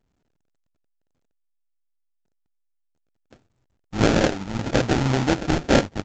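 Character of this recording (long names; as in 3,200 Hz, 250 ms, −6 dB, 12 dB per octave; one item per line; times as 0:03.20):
a buzz of ramps at a fixed pitch in blocks of 32 samples
phaser sweep stages 12, 1 Hz, lowest notch 300–1,100 Hz
aliases and images of a low sample rate 1,100 Hz, jitter 20%
A-law companding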